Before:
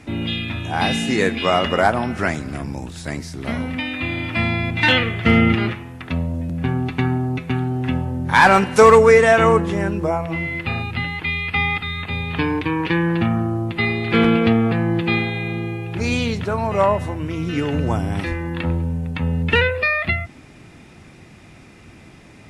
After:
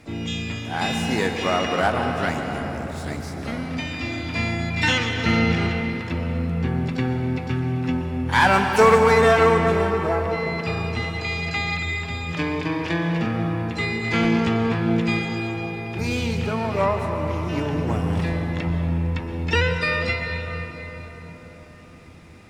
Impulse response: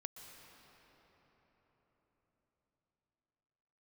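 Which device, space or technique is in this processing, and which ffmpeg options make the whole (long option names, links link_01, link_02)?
shimmer-style reverb: -filter_complex "[0:a]asplit=3[link_01][link_02][link_03];[link_01]afade=type=out:start_time=12.32:duration=0.02[link_04];[link_02]highpass=frequency=130:width=0.5412,highpass=frequency=130:width=1.3066,afade=type=in:start_time=12.32:duration=0.02,afade=type=out:start_time=13.25:duration=0.02[link_05];[link_03]afade=type=in:start_time=13.25:duration=0.02[link_06];[link_04][link_05][link_06]amix=inputs=3:normalize=0,asplit=2[link_07][link_08];[link_08]asetrate=88200,aresample=44100,atempo=0.5,volume=-12dB[link_09];[link_07][link_09]amix=inputs=2:normalize=0[link_10];[1:a]atrim=start_sample=2205[link_11];[link_10][link_11]afir=irnorm=-1:irlink=0"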